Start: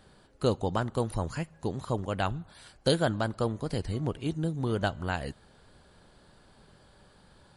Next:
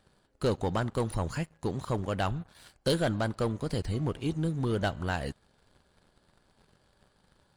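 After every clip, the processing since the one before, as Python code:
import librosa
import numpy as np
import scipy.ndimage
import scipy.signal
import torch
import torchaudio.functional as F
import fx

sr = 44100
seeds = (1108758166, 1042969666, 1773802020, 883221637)

y = fx.leveller(x, sr, passes=2)
y = F.gain(torch.from_numpy(y), -6.0).numpy()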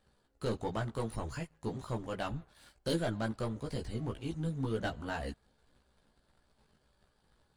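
y = fx.chorus_voices(x, sr, voices=6, hz=0.79, base_ms=16, depth_ms=2.5, mix_pct=45)
y = F.gain(torch.from_numpy(y), -3.0).numpy()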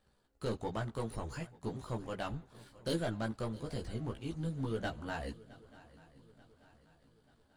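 y = fx.echo_swing(x, sr, ms=886, ratio=3, feedback_pct=46, wet_db=-20.5)
y = F.gain(torch.from_numpy(y), -2.0).numpy()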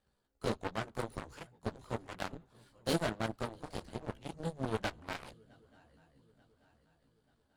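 y = fx.cheby_harmonics(x, sr, harmonics=(7,), levels_db=(-14,), full_scale_db=-22.5)
y = F.gain(torch.from_numpy(y), 2.5).numpy()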